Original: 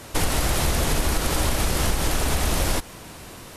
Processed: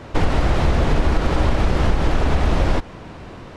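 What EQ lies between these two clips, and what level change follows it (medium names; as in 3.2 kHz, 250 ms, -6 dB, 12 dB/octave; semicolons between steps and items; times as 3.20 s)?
tape spacing loss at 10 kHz 29 dB; +6.5 dB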